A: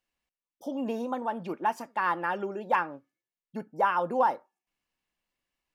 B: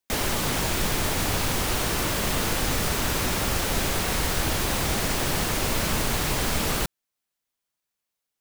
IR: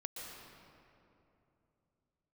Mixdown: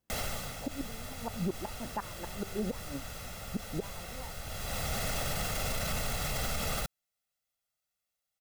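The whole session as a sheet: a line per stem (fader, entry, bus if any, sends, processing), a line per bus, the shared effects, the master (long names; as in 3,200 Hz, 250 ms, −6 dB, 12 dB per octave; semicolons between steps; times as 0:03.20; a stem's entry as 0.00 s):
−1.0 dB, 0.00 s, no send, high-pass filter 92 Hz 12 dB per octave; spectral tilt −5.5 dB per octave; gate with flip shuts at −17 dBFS, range −28 dB
−4.5 dB, 0.00 s, no send, comb filter 1.5 ms, depth 68%; automatic ducking −15 dB, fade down 0.60 s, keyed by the first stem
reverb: not used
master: brickwall limiter −24 dBFS, peak gain reduction 10 dB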